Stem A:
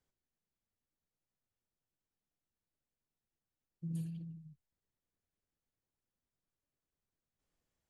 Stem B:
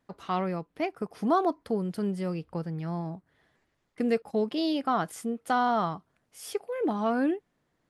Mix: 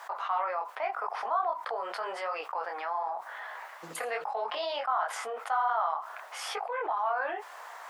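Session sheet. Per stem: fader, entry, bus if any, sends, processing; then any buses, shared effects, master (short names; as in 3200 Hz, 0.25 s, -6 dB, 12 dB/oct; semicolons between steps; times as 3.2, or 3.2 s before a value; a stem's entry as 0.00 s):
-5.0 dB, 0.00 s, no send, dry
+2.0 dB, 0.00 s, no send, band-pass 1000 Hz, Q 1.5; detuned doubles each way 31 cents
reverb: off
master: HPF 670 Hz 24 dB/oct; high shelf 7500 Hz -5 dB; fast leveller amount 70%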